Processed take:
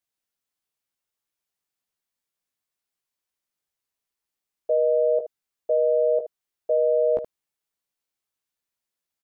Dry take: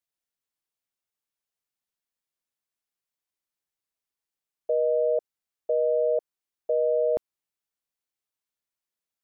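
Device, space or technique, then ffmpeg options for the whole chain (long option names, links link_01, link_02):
slapback doubling: -filter_complex "[0:a]asplit=3[link_01][link_02][link_03];[link_02]adelay=16,volume=-5dB[link_04];[link_03]adelay=75,volume=-10.5dB[link_05];[link_01][link_04][link_05]amix=inputs=3:normalize=0,volume=1.5dB"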